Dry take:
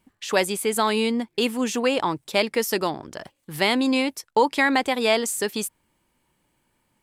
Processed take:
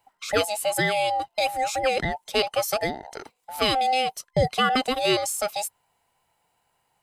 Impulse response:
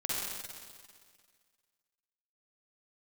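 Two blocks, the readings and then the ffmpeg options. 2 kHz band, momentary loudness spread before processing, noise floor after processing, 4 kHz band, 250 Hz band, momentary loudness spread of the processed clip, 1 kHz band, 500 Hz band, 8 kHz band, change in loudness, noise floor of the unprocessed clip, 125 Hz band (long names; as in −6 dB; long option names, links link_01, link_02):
−2.5 dB, 9 LU, −73 dBFS, +0.5 dB, −8.5 dB, 9 LU, +1.5 dB, −1.5 dB, −1.0 dB, −1.5 dB, −72 dBFS, +5.5 dB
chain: -af "afftfilt=real='real(if(between(b,1,1008),(2*floor((b-1)/48)+1)*48-b,b),0)':imag='imag(if(between(b,1,1008),(2*floor((b-1)/48)+1)*48-b,b),0)*if(between(b,1,1008),-1,1)':win_size=2048:overlap=0.75,lowshelf=frequency=210:gain=-4.5,volume=-1dB"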